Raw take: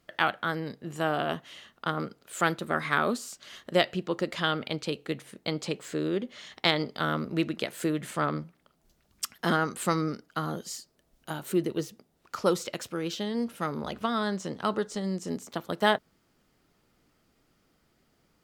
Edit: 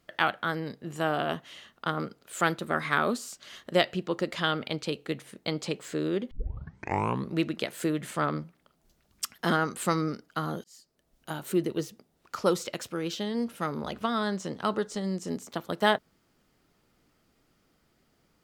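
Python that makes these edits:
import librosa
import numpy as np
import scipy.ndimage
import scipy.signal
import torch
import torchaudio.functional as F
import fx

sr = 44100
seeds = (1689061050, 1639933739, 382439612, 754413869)

y = fx.edit(x, sr, fx.tape_start(start_s=6.31, length_s=1.04),
    fx.fade_in_span(start_s=10.64, length_s=0.82, curve='qsin'), tone=tone)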